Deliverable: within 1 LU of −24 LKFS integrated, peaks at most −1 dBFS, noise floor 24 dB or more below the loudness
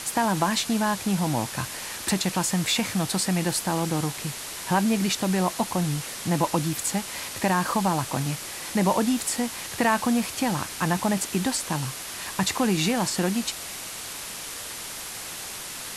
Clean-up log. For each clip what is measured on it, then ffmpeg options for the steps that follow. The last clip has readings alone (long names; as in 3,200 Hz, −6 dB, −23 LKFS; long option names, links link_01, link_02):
background noise floor −36 dBFS; target noise floor −50 dBFS; integrated loudness −26.0 LKFS; sample peak −9.0 dBFS; target loudness −24.0 LKFS
→ -af "afftdn=noise_reduction=14:noise_floor=-36"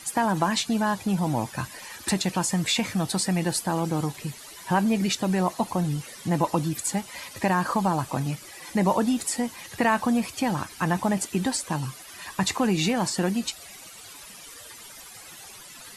background noise floor −45 dBFS; target noise floor −50 dBFS
→ -af "afftdn=noise_reduction=6:noise_floor=-45"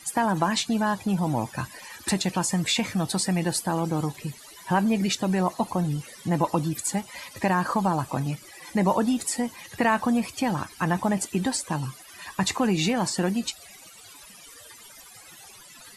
background noise floor −48 dBFS; target noise floor −50 dBFS
→ -af "afftdn=noise_reduction=6:noise_floor=-48"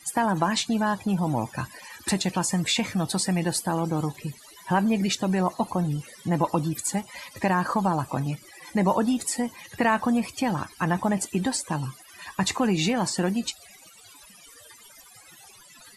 background noise floor −51 dBFS; integrated loudness −26.0 LKFS; sample peak −9.0 dBFS; target loudness −24.0 LKFS
→ -af "volume=2dB"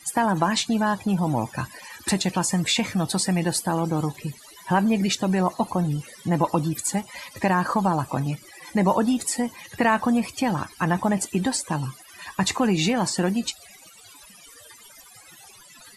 integrated loudness −24.0 LKFS; sample peak −7.0 dBFS; background noise floor −49 dBFS